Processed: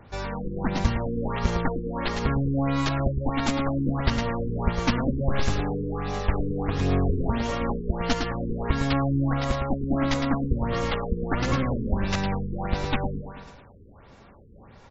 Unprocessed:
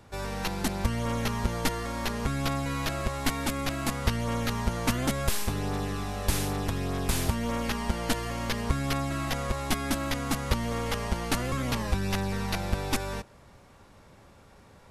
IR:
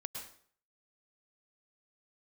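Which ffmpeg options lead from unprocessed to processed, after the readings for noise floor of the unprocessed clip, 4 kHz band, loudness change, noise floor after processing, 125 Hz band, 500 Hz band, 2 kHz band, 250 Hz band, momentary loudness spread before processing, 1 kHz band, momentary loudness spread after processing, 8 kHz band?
-55 dBFS, -1.0 dB, +3.5 dB, -50 dBFS, +4.5 dB, +4.5 dB, +0.5 dB, +5.0 dB, 3 LU, +2.5 dB, 5 LU, -8.0 dB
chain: -af "aecho=1:1:109|218|327|436|545|654:0.501|0.261|0.136|0.0705|0.0366|0.0191,aphaser=in_gain=1:out_gain=1:delay=4.4:decay=0.23:speed=1.3:type=sinusoidal,afftfilt=real='re*lt(b*sr/1024,470*pow(7800/470,0.5+0.5*sin(2*PI*1.5*pts/sr)))':imag='im*lt(b*sr/1024,470*pow(7800/470,0.5+0.5*sin(2*PI*1.5*pts/sr)))':win_size=1024:overlap=0.75,volume=2.5dB"

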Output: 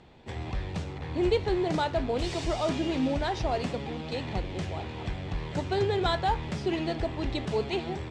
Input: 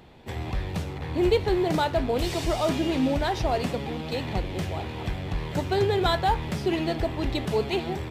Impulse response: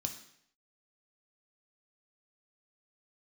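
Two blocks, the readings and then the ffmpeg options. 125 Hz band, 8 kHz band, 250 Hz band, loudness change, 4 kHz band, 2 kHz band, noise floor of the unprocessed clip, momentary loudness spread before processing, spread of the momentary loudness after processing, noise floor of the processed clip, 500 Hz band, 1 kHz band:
-3.5 dB, -5.0 dB, -3.5 dB, -3.5 dB, -3.5 dB, -3.5 dB, -35 dBFS, 9 LU, 9 LU, -39 dBFS, -3.5 dB, -3.5 dB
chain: -af "lowpass=f=8.2k:w=0.5412,lowpass=f=8.2k:w=1.3066,volume=-3.5dB"

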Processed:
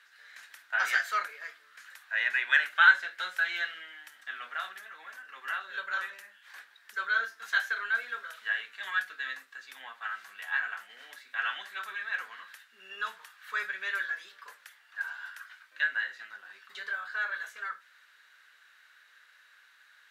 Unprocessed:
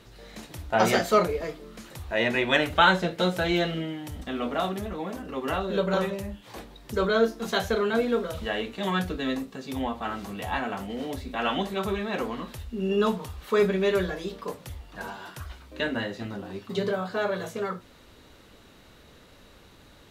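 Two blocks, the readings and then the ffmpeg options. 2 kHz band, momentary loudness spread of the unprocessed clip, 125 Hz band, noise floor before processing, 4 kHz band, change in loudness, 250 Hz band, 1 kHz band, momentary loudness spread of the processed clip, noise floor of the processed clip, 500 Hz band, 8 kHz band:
+4.0 dB, 16 LU, under -40 dB, -53 dBFS, -7.0 dB, -3.5 dB, under -35 dB, -7.0 dB, 21 LU, -61 dBFS, -27.5 dB, -8.5 dB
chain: -af "highpass=f=1.6k:t=q:w=6.1,volume=-9dB"

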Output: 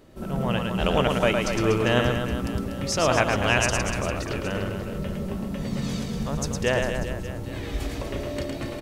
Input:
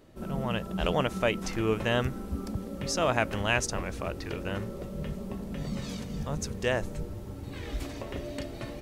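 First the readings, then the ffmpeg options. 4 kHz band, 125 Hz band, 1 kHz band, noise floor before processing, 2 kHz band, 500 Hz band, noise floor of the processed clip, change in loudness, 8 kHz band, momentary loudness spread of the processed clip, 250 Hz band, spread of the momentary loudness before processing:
+6.5 dB, +6.0 dB, +6.0 dB, -40 dBFS, +6.0 dB, +6.0 dB, -34 dBFS, +6.0 dB, +6.0 dB, 10 LU, +6.0 dB, 11 LU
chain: -af "aecho=1:1:110|242|400.4|590.5|818.6:0.631|0.398|0.251|0.158|0.1,volume=4dB"

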